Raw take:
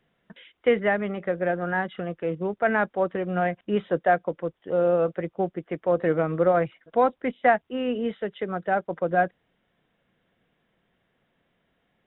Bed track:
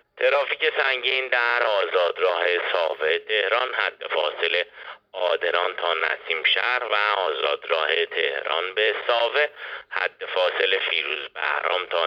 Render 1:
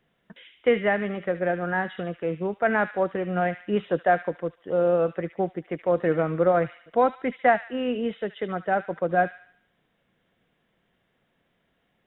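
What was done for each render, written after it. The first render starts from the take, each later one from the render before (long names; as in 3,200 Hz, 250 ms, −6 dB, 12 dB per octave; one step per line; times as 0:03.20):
delay with a high-pass on its return 73 ms, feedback 46%, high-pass 2,400 Hz, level −5 dB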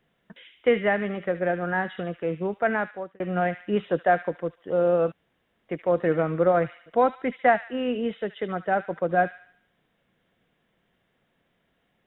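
0:02.60–0:03.20: fade out
0:05.12–0:05.69: fill with room tone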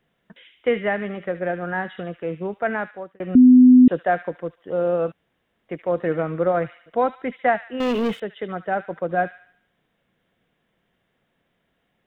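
0:03.35–0:03.88: beep over 252 Hz −6.5 dBFS
0:07.80–0:08.20: leveller curve on the samples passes 3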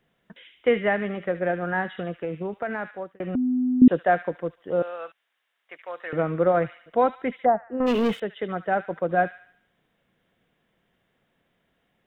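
0:02.24–0:03.82: downward compressor 4 to 1, threshold −25 dBFS
0:04.82–0:06.13: high-pass filter 1,200 Hz
0:07.44–0:07.86: low-pass filter 1,000 Hz → 1,500 Hz 24 dB per octave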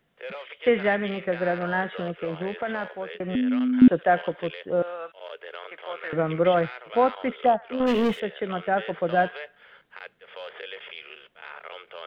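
mix in bed track −17.5 dB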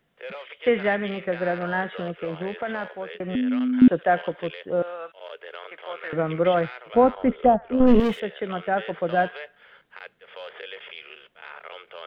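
0:06.94–0:08.00: spectral tilt −4 dB per octave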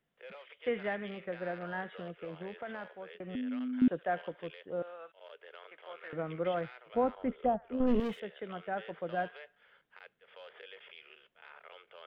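level −12.5 dB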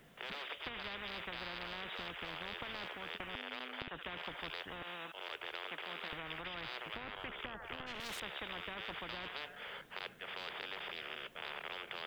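downward compressor, threshold −35 dBFS, peak gain reduction 12.5 dB
every bin compressed towards the loudest bin 10 to 1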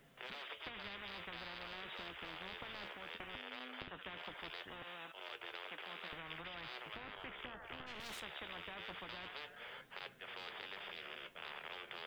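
flanger 0.2 Hz, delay 7.1 ms, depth 9 ms, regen +59%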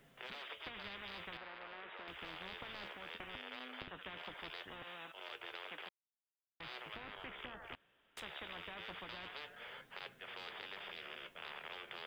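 0:01.37–0:02.08: three-way crossover with the lows and the highs turned down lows −13 dB, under 260 Hz, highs −19 dB, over 2,700 Hz
0:05.89–0:06.60: silence
0:07.75–0:08.17: fill with room tone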